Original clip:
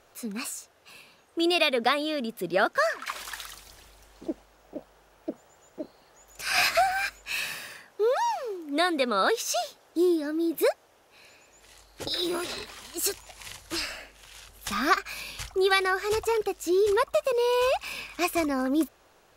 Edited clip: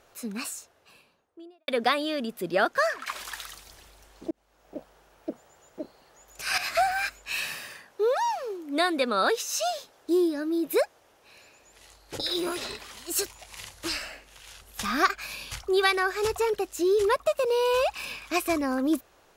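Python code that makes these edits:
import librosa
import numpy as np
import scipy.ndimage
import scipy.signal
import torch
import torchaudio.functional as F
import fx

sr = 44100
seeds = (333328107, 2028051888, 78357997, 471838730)

y = fx.studio_fade_out(x, sr, start_s=0.45, length_s=1.23)
y = fx.edit(y, sr, fx.fade_in_span(start_s=4.31, length_s=0.46),
    fx.fade_in_from(start_s=6.58, length_s=0.25, floor_db=-16.0),
    fx.stretch_span(start_s=9.41, length_s=0.25, factor=1.5), tone=tone)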